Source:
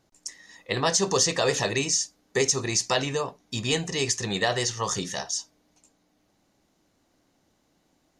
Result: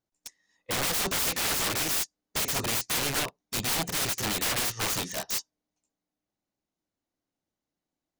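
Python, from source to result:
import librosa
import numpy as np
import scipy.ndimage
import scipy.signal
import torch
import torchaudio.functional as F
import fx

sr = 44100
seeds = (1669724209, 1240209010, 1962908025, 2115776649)

y = (np.mod(10.0 ** (26.0 / 20.0) * x + 1.0, 2.0) - 1.0) / 10.0 ** (26.0 / 20.0)
y = fx.upward_expand(y, sr, threshold_db=-47.0, expansion=2.5)
y = y * librosa.db_to_amplitude(4.5)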